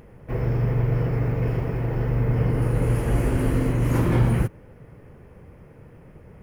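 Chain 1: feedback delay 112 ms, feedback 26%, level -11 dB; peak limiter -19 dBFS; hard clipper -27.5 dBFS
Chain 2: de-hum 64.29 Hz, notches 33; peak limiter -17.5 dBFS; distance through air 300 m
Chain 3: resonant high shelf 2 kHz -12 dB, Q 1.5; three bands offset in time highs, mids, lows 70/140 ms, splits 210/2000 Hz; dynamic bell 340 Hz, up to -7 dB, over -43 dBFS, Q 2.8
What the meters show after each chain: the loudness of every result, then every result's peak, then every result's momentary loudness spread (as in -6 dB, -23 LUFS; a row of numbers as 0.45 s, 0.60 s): -32.0 LUFS, -27.0 LUFS, -25.0 LUFS; -27.5 dBFS, -17.5 dBFS, -10.0 dBFS; 17 LU, 3 LU, 6 LU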